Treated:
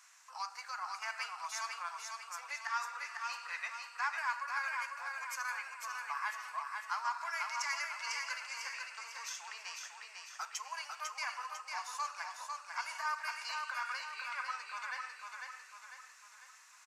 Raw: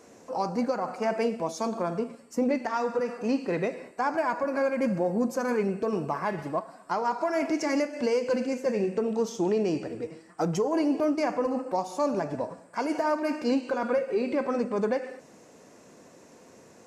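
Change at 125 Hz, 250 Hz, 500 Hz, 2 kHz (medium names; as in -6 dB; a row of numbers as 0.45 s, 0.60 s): under -40 dB, under -40 dB, -34.0 dB, 0.0 dB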